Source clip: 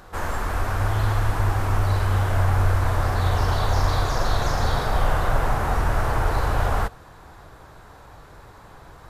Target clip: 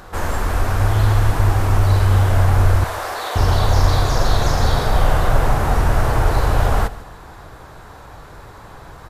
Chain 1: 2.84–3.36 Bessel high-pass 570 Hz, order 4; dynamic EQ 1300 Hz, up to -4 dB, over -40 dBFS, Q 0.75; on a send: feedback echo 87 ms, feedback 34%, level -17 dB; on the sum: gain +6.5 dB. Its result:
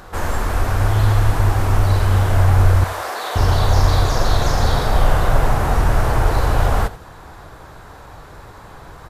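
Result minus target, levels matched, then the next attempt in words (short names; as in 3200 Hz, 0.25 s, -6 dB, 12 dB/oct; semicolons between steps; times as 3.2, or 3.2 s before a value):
echo 58 ms early
2.84–3.36 Bessel high-pass 570 Hz, order 4; dynamic EQ 1300 Hz, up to -4 dB, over -40 dBFS, Q 0.75; on a send: feedback echo 0.145 s, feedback 34%, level -17 dB; on the sum: gain +6.5 dB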